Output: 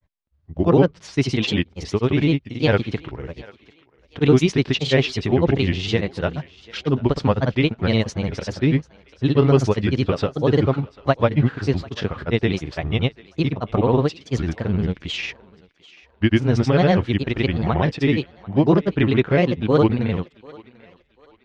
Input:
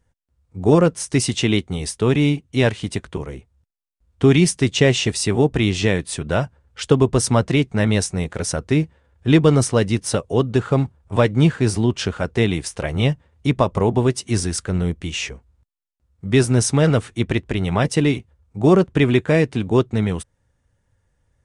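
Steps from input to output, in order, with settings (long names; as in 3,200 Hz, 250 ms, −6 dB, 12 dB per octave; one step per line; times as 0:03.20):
low-pass filter 4,500 Hz 24 dB per octave
granular cloud, pitch spread up and down by 3 semitones
feedback echo with a high-pass in the loop 742 ms, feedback 39%, high-pass 490 Hz, level −20.5 dB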